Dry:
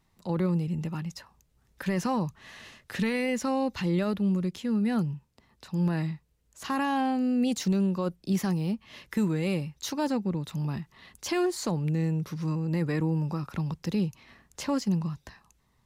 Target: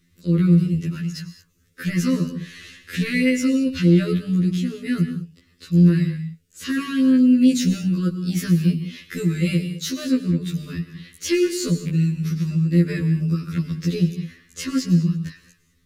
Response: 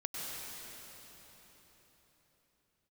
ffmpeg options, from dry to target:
-filter_complex "[0:a]asuperstop=centerf=810:order=4:qfactor=0.77,acontrast=65,asplit=2[a][b];[1:a]atrim=start_sample=2205,afade=t=out:st=0.27:d=0.01,atrim=end_sample=12348[c];[b][c]afir=irnorm=-1:irlink=0,volume=-4dB[d];[a][d]amix=inputs=2:normalize=0,afftfilt=real='re*2*eq(mod(b,4),0)':imag='im*2*eq(mod(b,4),0)':win_size=2048:overlap=0.75"

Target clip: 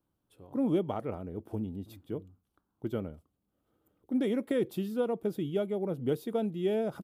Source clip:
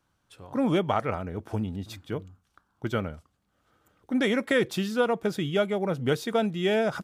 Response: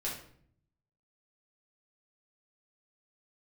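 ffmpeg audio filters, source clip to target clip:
-af "firequalizer=gain_entry='entry(110,0);entry(320,6);entry(630,-1);entry(1600,-11);entry(3100,-6);entry(5900,-11);entry(12000,4)':delay=0.05:min_phase=1,volume=-7.5dB"

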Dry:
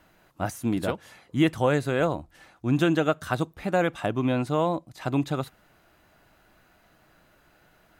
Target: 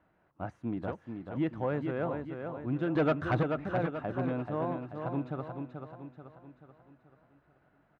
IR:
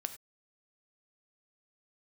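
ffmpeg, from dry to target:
-filter_complex "[0:a]asettb=1/sr,asplit=3[a][b][c];[a]atrim=end=2.954[d];[b]atrim=start=2.95:end=3.43,asetpts=PTS-STARTPTS,afade=t=in:d=0.004:c=qsin,afade=t=out:st=0.476:d=0.004:c=qsin,aeval=exprs='0.355*sin(PI/2*2.51*val(0)/0.355)':c=same[e];[c]atrim=start=3.426[f];[d][e]acrossfade=d=0.004:c1=hsin:c2=qsin[g];[g][f]acrossfade=d=0.004:c1=qsin:c2=hsin,lowpass=1.6k,aecho=1:1:434|868|1302|1736|2170|2604:0.473|0.222|0.105|0.0491|0.0231|0.0109,asoftclip=type=tanh:threshold=-11dB,highpass=42,volume=-8.5dB"

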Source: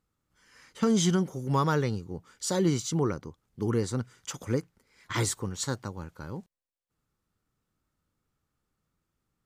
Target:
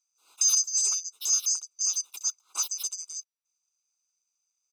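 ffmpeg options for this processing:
-filter_complex "[0:a]afftfilt=real='real(if(lt(b,272),68*(eq(floor(b/68),0)*1+eq(floor(b/68),1)*3+eq(floor(b/68),2)*0+eq(floor(b/68),3)*2)+mod(b,68),b),0)':imag='imag(if(lt(b,272),68*(eq(floor(b/68),0)*1+eq(floor(b/68),1)*3+eq(floor(b/68),2)*0+eq(floor(b/68),3)*2)+mod(b,68),b),0)':win_size=2048:overlap=0.75,highpass=f=210:w=0.5412,highpass=f=210:w=1.3066,aecho=1:1:1.6:0.94,acrossover=split=320|1100|3900[a][b][c][d];[c]acontrast=46[e];[d]flanger=delay=18.5:depth=5.8:speed=0.85[f];[a][b][e][f]amix=inputs=4:normalize=0,asplit=2[g][h];[h]asetrate=35002,aresample=44100,atempo=1.25992,volume=-9dB[i];[g][i]amix=inputs=2:normalize=0,asuperstop=centerf=890:order=8:qfactor=2.7,asetrate=88200,aresample=44100,volume=-7.5dB"

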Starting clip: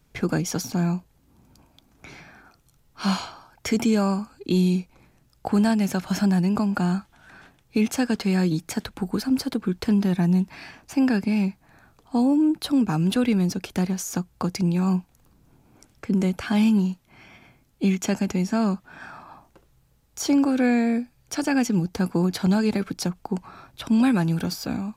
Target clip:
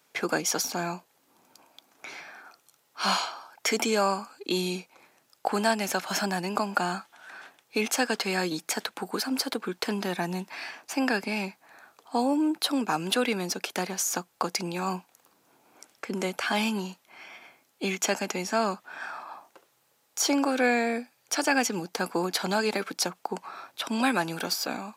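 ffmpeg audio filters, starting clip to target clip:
-af "highpass=520,volume=4dB"

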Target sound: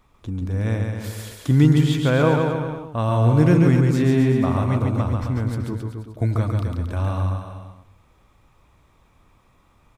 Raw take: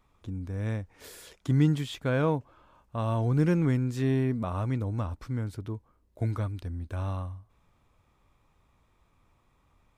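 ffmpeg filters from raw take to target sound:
-af "aecho=1:1:140|266|379.4|481.5|573.3:0.631|0.398|0.251|0.158|0.1,volume=7.5dB"

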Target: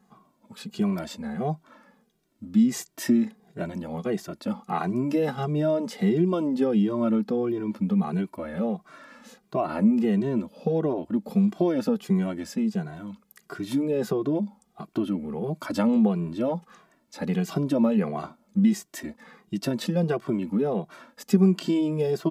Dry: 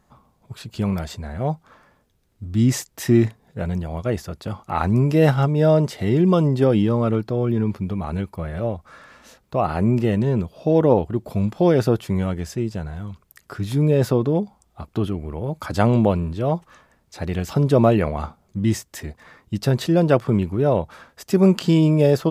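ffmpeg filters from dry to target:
-filter_complex "[0:a]acompressor=threshold=-19dB:ratio=6,lowshelf=f=140:t=q:w=3:g=-13,asplit=2[a][b];[b]adelay=2,afreqshift=-1.5[c];[a][c]amix=inputs=2:normalize=1"

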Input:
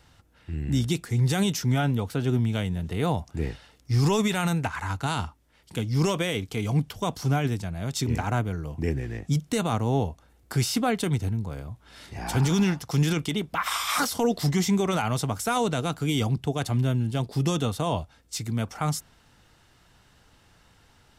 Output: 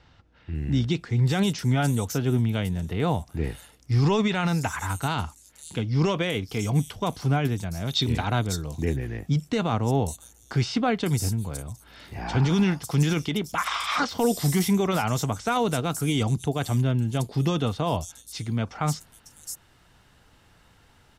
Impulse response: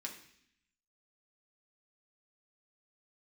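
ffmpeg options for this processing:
-filter_complex "[0:a]asettb=1/sr,asplit=3[a][b][c];[a]atrim=end=7.874[d];[b]atrim=start=7.87:end=8.43,asetpts=PTS-STARTPTS,afade=t=in:d=0.004:c=qsin,afade=t=out:st=0.556:d=0.004:c=qsin,equalizer=f=3.7k:t=o:w=0.5:g=14.5[e];[c]atrim=start=8.426[f];[d][e]acrossfade=d=0.004:c1=hsin:c2=qsin[g];[g][f]acrossfade=d=0.004:c1=qsin:c2=hsin,acrossover=split=5600[h][i];[i]adelay=550[j];[h][j]amix=inputs=2:normalize=0,volume=1dB"

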